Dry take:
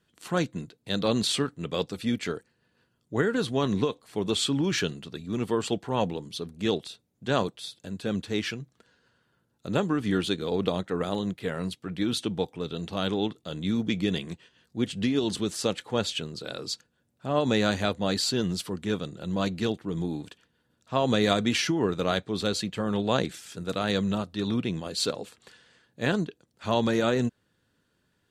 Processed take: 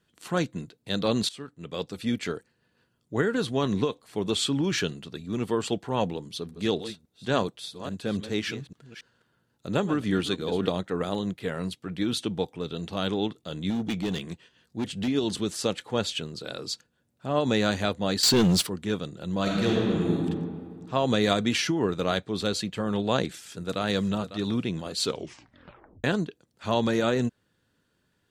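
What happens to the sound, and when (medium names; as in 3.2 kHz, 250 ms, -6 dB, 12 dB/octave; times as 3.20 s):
1.29–2.11 s: fade in linear, from -21 dB
6.22–10.72 s: chunks repeated in reverse 279 ms, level -12 dB
13.70–15.08 s: overload inside the chain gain 24 dB
18.23–18.67 s: waveshaping leveller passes 3
19.42–20.15 s: reverb throw, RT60 2.1 s, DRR -4 dB
23.28–23.82 s: echo throw 550 ms, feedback 40%, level -13 dB
25.03 s: tape stop 1.01 s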